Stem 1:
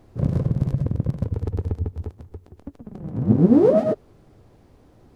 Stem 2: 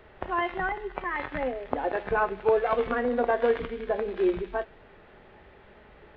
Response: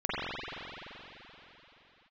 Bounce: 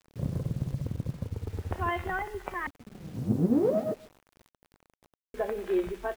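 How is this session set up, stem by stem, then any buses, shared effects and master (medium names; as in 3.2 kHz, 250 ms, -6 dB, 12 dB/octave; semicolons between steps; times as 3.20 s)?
-10.0 dB, 0.00 s, no send, echo send -22 dB, none
-3.0 dB, 1.50 s, muted 2.67–5.34 s, no send, no echo send, none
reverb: none
echo: feedback delay 141 ms, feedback 18%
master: bit crusher 9-bit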